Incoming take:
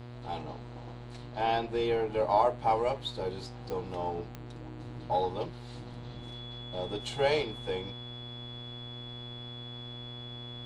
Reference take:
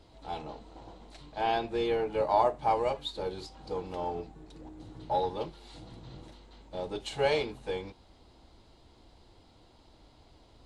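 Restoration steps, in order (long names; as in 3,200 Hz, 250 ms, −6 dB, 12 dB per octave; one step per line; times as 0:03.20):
click removal
hum removal 121 Hz, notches 38
notch filter 3,400 Hz, Q 30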